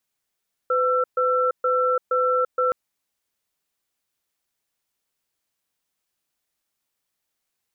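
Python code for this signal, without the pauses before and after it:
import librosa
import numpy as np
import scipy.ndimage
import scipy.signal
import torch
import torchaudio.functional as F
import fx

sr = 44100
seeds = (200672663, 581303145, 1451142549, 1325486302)

y = fx.cadence(sr, length_s=2.02, low_hz=505.0, high_hz=1340.0, on_s=0.34, off_s=0.13, level_db=-20.5)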